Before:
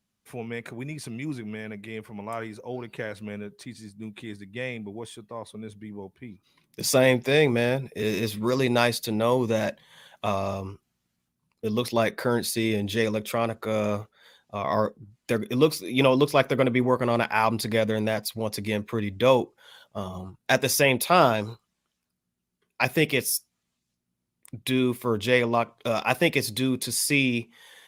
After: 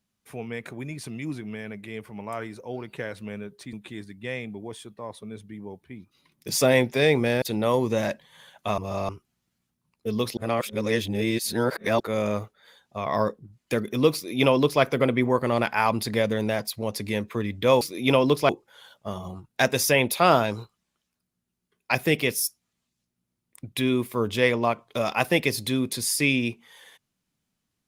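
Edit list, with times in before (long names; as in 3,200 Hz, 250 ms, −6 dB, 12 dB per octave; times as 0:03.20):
0:03.73–0:04.05: remove
0:07.74–0:09.00: remove
0:10.36–0:10.67: reverse
0:11.95–0:13.58: reverse
0:15.72–0:16.40: duplicate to 0:19.39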